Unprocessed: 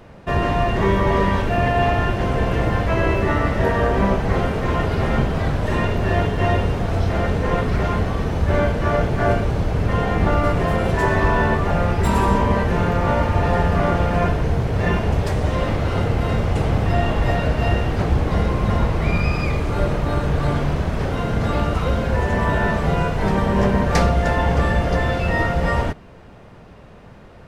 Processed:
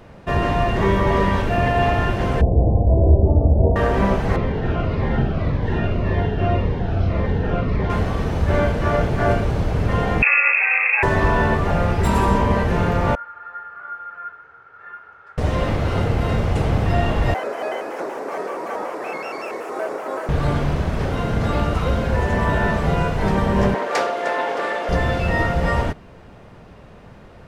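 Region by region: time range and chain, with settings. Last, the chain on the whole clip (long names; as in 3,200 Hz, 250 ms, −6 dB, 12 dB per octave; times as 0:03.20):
0:02.41–0:03.76: Butterworth low-pass 780 Hz 48 dB per octave + parametric band 73 Hz +13.5 dB 0.57 octaves
0:04.36–0:07.90: high-frequency loss of the air 210 metres + flutter between parallel walls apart 7.6 metres, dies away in 0.22 s + phaser whose notches keep moving one way falling 1.8 Hz
0:10.22–0:11.03: voice inversion scrambler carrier 2,600 Hz + Butterworth high-pass 420 Hz 48 dB per octave
0:13.15–0:15.38: resonant band-pass 1,400 Hz, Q 17 + comb filter 2.3 ms, depth 33%
0:17.34–0:20.29: high-pass filter 370 Hz 24 dB per octave + parametric band 3,500 Hz −14 dB 0.93 octaves + pitch modulation by a square or saw wave square 5.3 Hz, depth 160 cents
0:23.74–0:24.89: high-pass filter 350 Hz 24 dB per octave + high-shelf EQ 6,000 Hz −4.5 dB + highs frequency-modulated by the lows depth 0.21 ms
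whole clip: no processing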